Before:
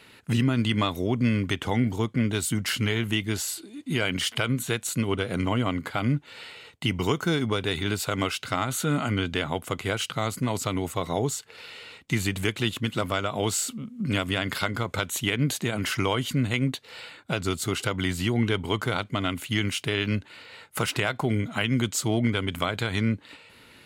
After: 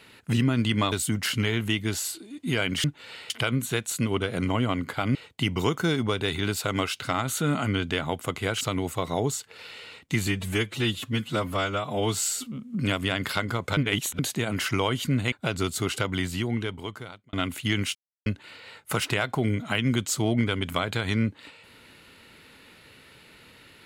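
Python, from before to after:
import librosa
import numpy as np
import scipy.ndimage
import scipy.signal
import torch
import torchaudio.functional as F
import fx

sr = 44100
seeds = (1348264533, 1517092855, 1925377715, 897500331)

y = fx.edit(x, sr, fx.cut(start_s=0.92, length_s=1.43),
    fx.move(start_s=6.12, length_s=0.46, to_s=4.27),
    fx.cut(start_s=10.04, length_s=0.56),
    fx.stretch_span(start_s=12.26, length_s=1.46, factor=1.5),
    fx.reverse_span(start_s=15.03, length_s=0.42),
    fx.cut(start_s=16.58, length_s=0.6),
    fx.fade_out_span(start_s=17.91, length_s=1.28),
    fx.silence(start_s=19.81, length_s=0.31), tone=tone)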